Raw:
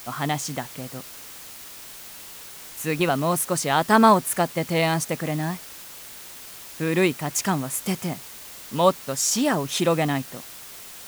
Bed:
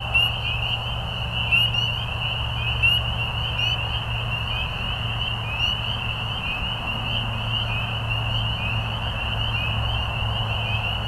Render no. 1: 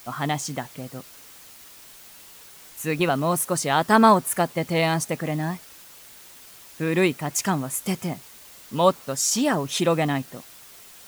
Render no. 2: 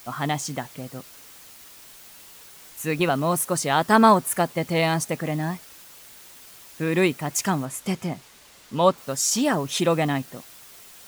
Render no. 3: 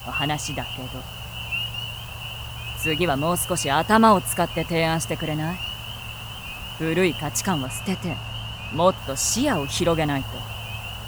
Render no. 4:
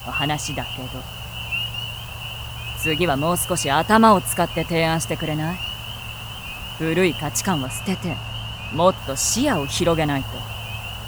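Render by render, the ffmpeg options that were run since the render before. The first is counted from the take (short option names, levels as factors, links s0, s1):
-af "afftdn=nr=6:nf=-41"
-filter_complex "[0:a]asettb=1/sr,asplit=3[s0][s1][s2];[s0]atrim=end=7.654[s3];[s1]atrim=start=7.65:end=8.98,asetpts=PTS-STARTPTS,afade=t=in:d=0.004:c=qsin,afade=t=out:st=1.326:d=0.004:c=qsin,highshelf=f=9800:g=-11.5[s4];[s2]atrim=start=8.976[s5];[s3][s4]acrossfade=d=0.004:c1=hsin:c2=qsin[s6];[s6][s5]acrossfade=d=0.004:c1=qsin:c2=hsin"
-filter_complex "[1:a]volume=0.376[s0];[0:a][s0]amix=inputs=2:normalize=0"
-af "volume=1.26"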